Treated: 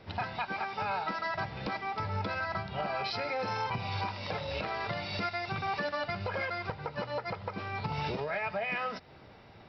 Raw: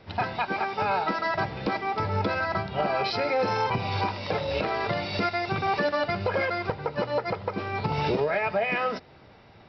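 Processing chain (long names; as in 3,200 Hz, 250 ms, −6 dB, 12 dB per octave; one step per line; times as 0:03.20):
dynamic equaliser 370 Hz, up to −7 dB, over −41 dBFS, Q 0.96
in parallel at +1 dB: downward compressor, threshold −36 dBFS, peak gain reduction 11.5 dB
on the sum: level −8 dB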